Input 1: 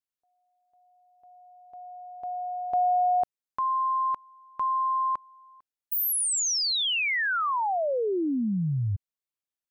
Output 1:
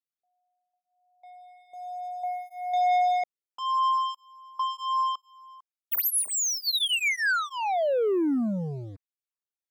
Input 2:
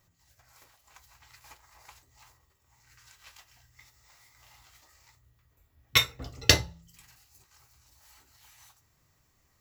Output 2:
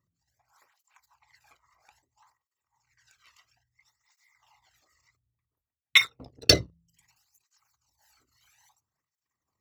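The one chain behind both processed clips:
spectral envelope exaggerated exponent 2
leveller curve on the samples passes 2
through-zero flanger with one copy inverted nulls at 0.6 Hz, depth 1.3 ms

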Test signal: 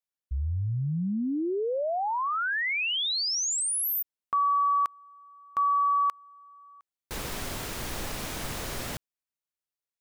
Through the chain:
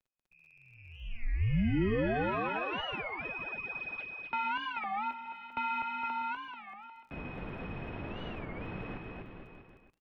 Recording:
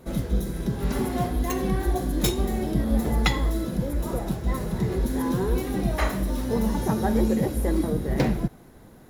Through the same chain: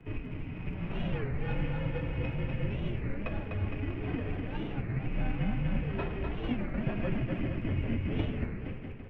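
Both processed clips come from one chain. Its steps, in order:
samples sorted by size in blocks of 16 samples
flanger 0.33 Hz, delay 2.9 ms, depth 9.6 ms, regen −49%
high-frequency loss of the air 120 metres
echo with shifted repeats 101 ms, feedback 35%, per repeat −49 Hz, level −22.5 dB
downward compressor, threshold −29 dBFS
single-sideband voice off tune −62 Hz 310–3,600 Hz
bouncing-ball delay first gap 250 ms, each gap 0.85×, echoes 5
frequency shifter −170 Hz
surface crackle 22 per second −54 dBFS
spectral tilt −2 dB per octave
wow of a warped record 33 1/3 rpm, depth 250 cents

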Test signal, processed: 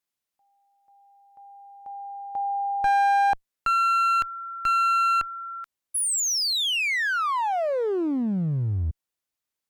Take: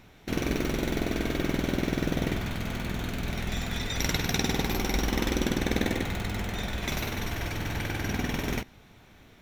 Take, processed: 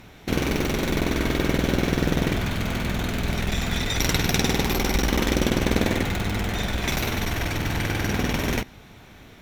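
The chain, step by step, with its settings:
asymmetric clip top −31.5 dBFS
level +7.5 dB

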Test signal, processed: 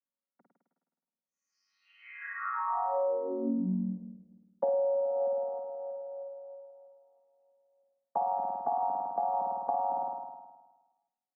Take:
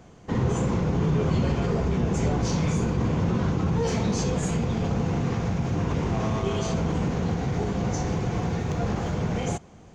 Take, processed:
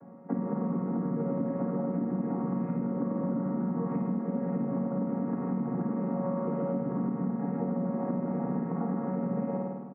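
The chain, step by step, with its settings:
channel vocoder with a chord as carrier major triad, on F#3
on a send: flutter between parallel walls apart 9 metres, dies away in 1.2 s
on the sum: downward compressor 12 to 1, threshold −28 dBFS
inverse Chebyshev low-pass filter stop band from 3,300 Hz, stop band 40 dB
slap from a distant wall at 56 metres, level −21 dB
level +1.5 dB

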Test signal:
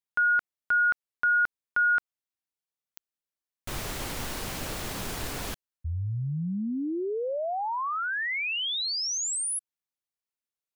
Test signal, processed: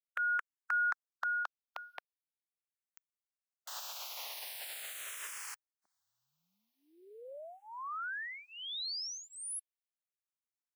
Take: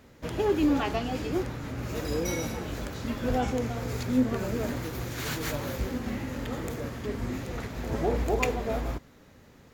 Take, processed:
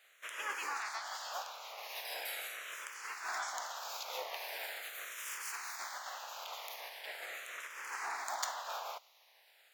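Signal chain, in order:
ceiling on every frequency bin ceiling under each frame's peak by 22 dB
high-pass filter 650 Hz 24 dB per octave
frequency shifter mixed with the dry sound −0.41 Hz
level −7 dB

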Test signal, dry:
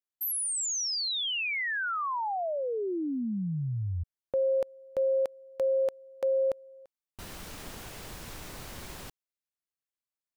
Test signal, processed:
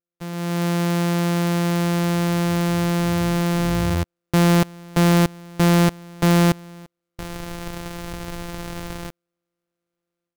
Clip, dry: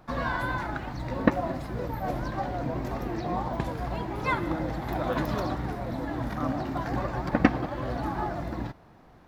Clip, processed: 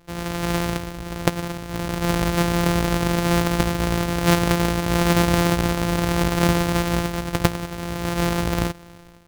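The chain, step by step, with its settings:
samples sorted by size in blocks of 256 samples
automatic gain control gain up to 12 dB
level −1 dB

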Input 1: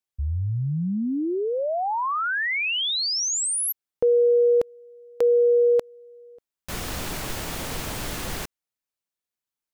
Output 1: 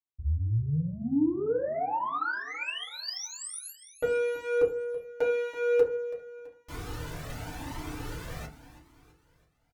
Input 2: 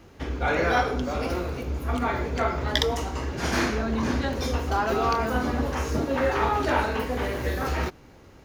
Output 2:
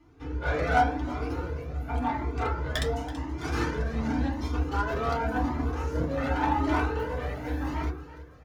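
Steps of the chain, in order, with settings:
wavefolder on the positive side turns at −15.5 dBFS
high-shelf EQ 5,700 Hz −5 dB
harmonic generator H 2 −28 dB, 5 −34 dB, 7 −20 dB, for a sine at −6.5 dBFS
on a send: repeating echo 330 ms, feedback 48%, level −15 dB
on the sum: feedback delay network reverb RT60 0.34 s, low-frequency decay 1.55×, high-frequency decay 0.4×, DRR −4 dB
flanger whose copies keep moving one way rising 0.9 Hz
level −2.5 dB

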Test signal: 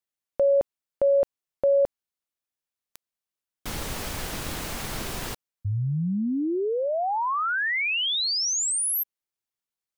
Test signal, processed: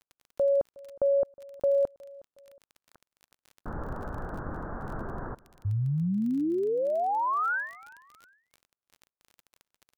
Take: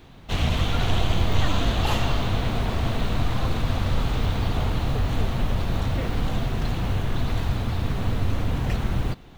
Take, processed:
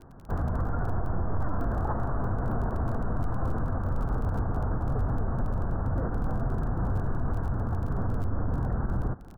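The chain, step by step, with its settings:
Butterworth low-pass 1,600 Hz 72 dB per octave
brickwall limiter −18.5 dBFS
surface crackle 23 per second −37 dBFS
repeating echo 364 ms, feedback 37%, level −23 dB
level −1.5 dB

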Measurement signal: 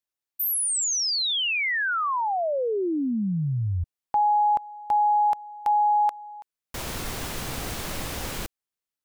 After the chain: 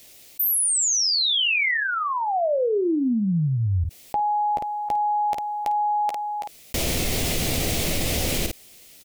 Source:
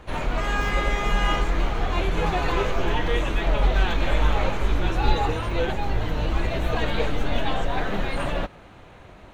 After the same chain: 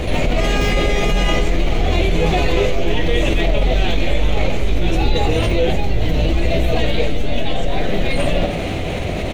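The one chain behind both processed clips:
flat-topped bell 1,200 Hz −11.5 dB 1.2 octaves
ambience of single reflections 12 ms −11 dB, 52 ms −15 dB
envelope flattener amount 70%
level +1.5 dB

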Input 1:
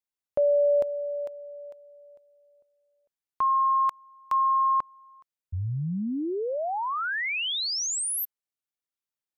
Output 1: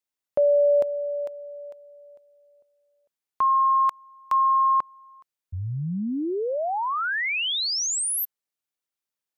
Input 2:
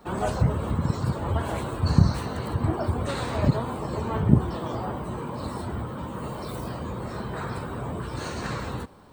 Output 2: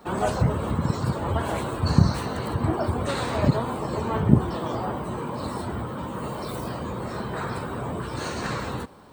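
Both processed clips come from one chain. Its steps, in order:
low-shelf EQ 100 Hz −7 dB
level +3 dB

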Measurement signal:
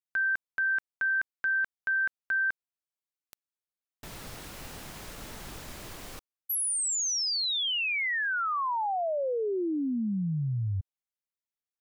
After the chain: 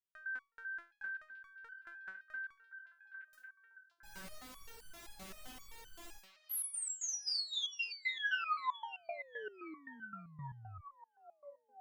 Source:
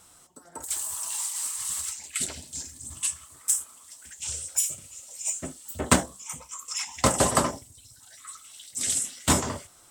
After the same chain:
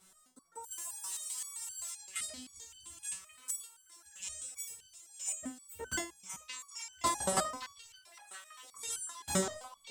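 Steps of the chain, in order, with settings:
echo through a band-pass that steps 567 ms, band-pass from 3,600 Hz, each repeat −0.7 octaves, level −7 dB
step-sequenced resonator 7.7 Hz 190–1,500 Hz
level +5.5 dB

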